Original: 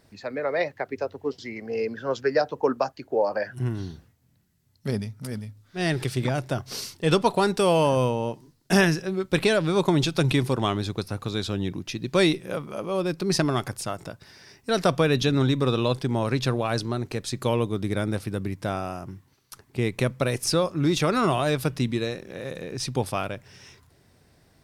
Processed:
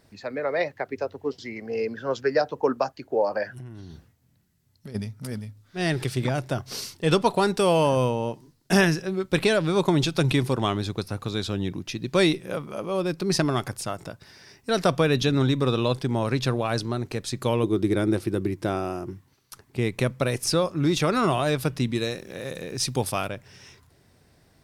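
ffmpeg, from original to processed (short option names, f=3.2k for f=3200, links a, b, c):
-filter_complex "[0:a]asplit=3[a][b][c];[a]afade=t=out:st=3.54:d=0.02[d];[b]acompressor=threshold=-36dB:ratio=10:attack=3.2:release=140:knee=1:detection=peak,afade=t=in:st=3.54:d=0.02,afade=t=out:st=4.94:d=0.02[e];[c]afade=t=in:st=4.94:d=0.02[f];[d][e][f]amix=inputs=3:normalize=0,asettb=1/sr,asplit=3[g][h][i];[g]atrim=end=17.634[j];[h]atrim=start=17.63:end=19.13,asetpts=PTS-STARTPTS,afade=t=in:d=0.004:c=qsin,afade=t=out:st=1.496:d=0.004:c=qsin,equalizer=f=350:t=o:w=0.33:g=14.5[k];[i]atrim=start=19.126[l];[j][k]acrossfade=d=0.004:c1=hsin:c2=qsin[m];[m][l]acrossfade=d=0.004:c1=qsin:c2=hsin,asettb=1/sr,asplit=3[n][o][p];[n]atrim=end=21.954[q];[o]atrim=start=21.95:end=23.28,asetpts=PTS-STARTPTS,afade=t=in:d=0.004:c=qsin,afade=t=out:st=1.326:d=0.004:c=qsin,highshelf=f=4.6k:g=8.5[r];[p]atrim=start=23.276[s];[q][r]acrossfade=d=0.004:c1=hsin:c2=qsin[t];[t][s]acrossfade=d=0.004:c1=qsin:c2=hsin"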